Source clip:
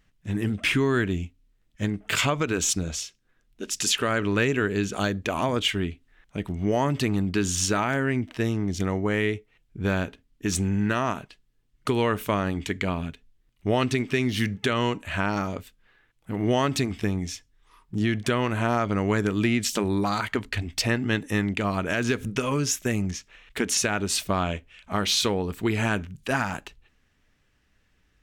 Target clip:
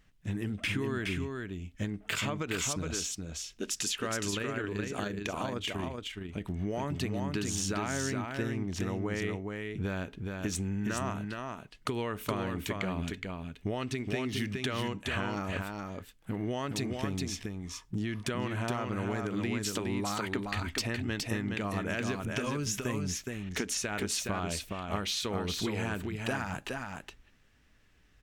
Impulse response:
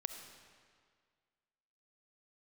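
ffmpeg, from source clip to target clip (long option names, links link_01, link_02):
-filter_complex "[0:a]acompressor=threshold=-31dB:ratio=6,asettb=1/sr,asplit=3[link_01][link_02][link_03];[link_01]atrim=end=4.304[link_04];[link_02]atrim=start=4.3:end=6.42,asetpts=PTS-STARTPTS,afade=type=in:duration=0.004:curve=qsin,afade=type=out:start_time=2.116:duration=0.004:curve=qsin,tremolo=f=26:d=0.4[link_05];[link_03]atrim=start=6.416[link_06];[link_04][link_05]acrossfade=duration=0.004:curve1=hsin:curve2=qsin[link_07];[link_07][link_06]acrossfade=duration=0.004:curve1=qsin:curve2=hsin,aecho=1:1:418:0.631"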